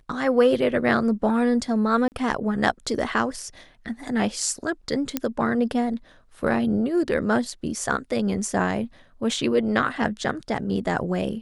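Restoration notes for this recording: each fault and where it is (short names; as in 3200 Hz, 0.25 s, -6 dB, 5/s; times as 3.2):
2.08–2.12 gap 39 ms
5.17 pop -8 dBFS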